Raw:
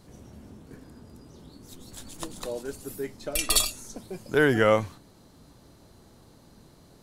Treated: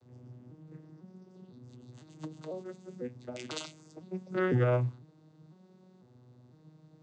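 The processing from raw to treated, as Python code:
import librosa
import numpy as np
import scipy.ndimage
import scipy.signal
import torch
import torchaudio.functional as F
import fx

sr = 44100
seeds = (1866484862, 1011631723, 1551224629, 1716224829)

y = fx.vocoder_arp(x, sr, chord='major triad', root=47, every_ms=501)
y = F.gain(torch.from_numpy(y), -5.5).numpy()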